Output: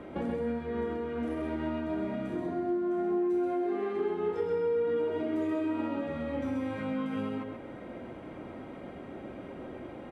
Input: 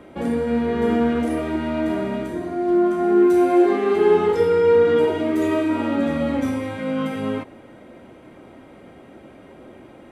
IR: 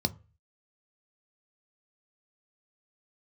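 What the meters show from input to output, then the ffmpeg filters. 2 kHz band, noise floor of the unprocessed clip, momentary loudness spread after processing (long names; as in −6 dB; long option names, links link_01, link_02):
−12.5 dB, −45 dBFS, 14 LU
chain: -af "lowpass=frequency=2600:poles=1,acompressor=threshold=-32dB:ratio=6,aecho=1:1:130:0.596"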